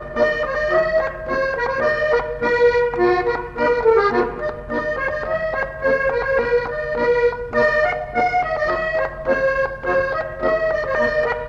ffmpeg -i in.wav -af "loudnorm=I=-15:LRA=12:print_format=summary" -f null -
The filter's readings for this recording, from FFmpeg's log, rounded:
Input Integrated:    -19.4 LUFS
Input True Peak:      -5.4 dBTP
Input LRA:             1.7 LU
Input Threshold:     -29.4 LUFS